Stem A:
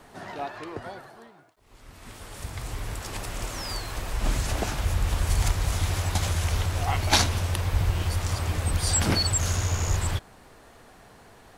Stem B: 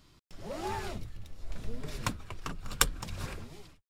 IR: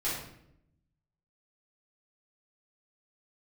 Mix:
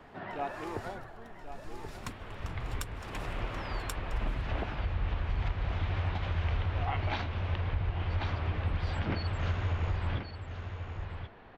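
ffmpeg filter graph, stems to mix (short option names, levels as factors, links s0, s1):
-filter_complex "[0:a]lowpass=f=3100:w=0.5412,lowpass=f=3100:w=1.3066,volume=0.794,asplit=2[s0][s1];[s1]volume=0.266[s2];[1:a]volume=0.335,asplit=2[s3][s4];[s4]volume=0.668[s5];[s2][s5]amix=inputs=2:normalize=0,aecho=0:1:1083:1[s6];[s0][s3][s6]amix=inputs=3:normalize=0,alimiter=limit=0.0794:level=0:latency=1:release=485"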